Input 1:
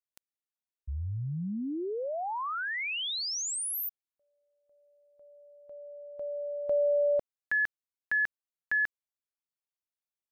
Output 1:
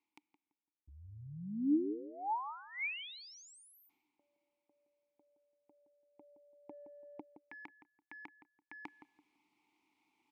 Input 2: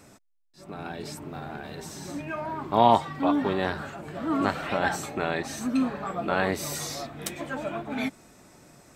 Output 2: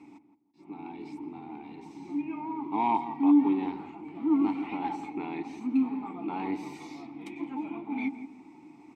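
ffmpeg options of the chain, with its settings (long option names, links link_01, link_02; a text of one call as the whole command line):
ffmpeg -i in.wav -filter_complex "[0:a]areverse,acompressor=mode=upward:threshold=-40dB:ratio=2.5:attack=13:release=549:knee=2.83:detection=peak,areverse,asoftclip=type=tanh:threshold=-13dB,asplit=3[link_01][link_02][link_03];[link_01]bandpass=frequency=300:width_type=q:width=8,volume=0dB[link_04];[link_02]bandpass=frequency=870:width_type=q:width=8,volume=-6dB[link_05];[link_03]bandpass=frequency=2240:width_type=q:width=8,volume=-9dB[link_06];[link_04][link_05][link_06]amix=inputs=3:normalize=0,asplit=2[link_07][link_08];[link_08]adelay=168,lowpass=frequency=1200:poles=1,volume=-10dB,asplit=2[link_09][link_10];[link_10]adelay=168,lowpass=frequency=1200:poles=1,volume=0.29,asplit=2[link_11][link_12];[link_12]adelay=168,lowpass=frequency=1200:poles=1,volume=0.29[link_13];[link_07][link_09][link_11][link_13]amix=inputs=4:normalize=0,volume=7dB" out.wav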